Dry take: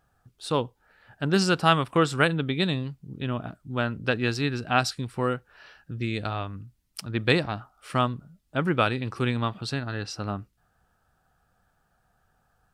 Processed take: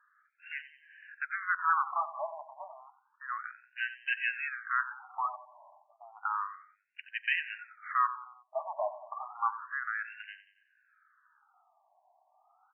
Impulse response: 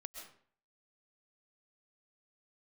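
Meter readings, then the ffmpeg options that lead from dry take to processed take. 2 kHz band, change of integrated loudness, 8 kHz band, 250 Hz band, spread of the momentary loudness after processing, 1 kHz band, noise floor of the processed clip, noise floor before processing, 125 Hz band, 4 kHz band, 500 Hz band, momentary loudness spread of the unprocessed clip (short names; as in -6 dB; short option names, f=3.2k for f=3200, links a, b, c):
-3.5 dB, -7.5 dB, under -40 dB, under -40 dB, 18 LU, -3.5 dB, -73 dBFS, -70 dBFS, under -40 dB, -16.5 dB, -15.0 dB, 15 LU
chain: -filter_complex "[0:a]asoftclip=type=tanh:threshold=-24.5dB,asplit=2[a][b];[b]aecho=0:1:91|182|273|364:0.2|0.0938|0.0441|0.0207[c];[a][c]amix=inputs=2:normalize=0,afftfilt=real='re*between(b*sr/1024,790*pow(2200/790,0.5+0.5*sin(2*PI*0.31*pts/sr))/1.41,790*pow(2200/790,0.5+0.5*sin(2*PI*0.31*pts/sr))*1.41)':imag='im*between(b*sr/1024,790*pow(2200/790,0.5+0.5*sin(2*PI*0.31*pts/sr))/1.41,790*pow(2200/790,0.5+0.5*sin(2*PI*0.31*pts/sr))*1.41)':win_size=1024:overlap=0.75,volume=6dB"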